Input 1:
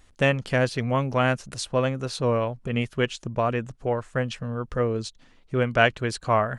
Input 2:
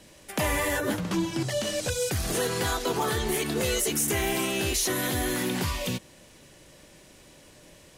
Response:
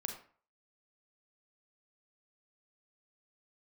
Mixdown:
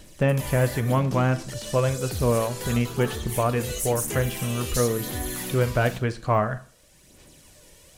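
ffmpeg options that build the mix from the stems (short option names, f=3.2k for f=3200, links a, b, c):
-filter_complex "[0:a]deesser=1,flanger=delay=4.6:depth=2.5:regen=-76:speed=0.41:shape=triangular,volume=1.5dB,asplit=3[a][b][c];[b]volume=-6.5dB[d];[1:a]highshelf=f=5k:g=9.5,aphaser=in_gain=1:out_gain=1:delay=2.2:decay=0.44:speed=0.97:type=sinusoidal,volume=-6dB,asplit=2[e][f];[f]volume=-10dB[g];[c]apad=whole_len=351840[h];[e][h]sidechaincompress=threshold=-34dB:ratio=8:attack=16:release=906[i];[2:a]atrim=start_sample=2205[j];[d][g]amix=inputs=2:normalize=0[k];[k][j]afir=irnorm=-1:irlink=0[l];[a][i][l]amix=inputs=3:normalize=0,lowshelf=f=140:g=5.5"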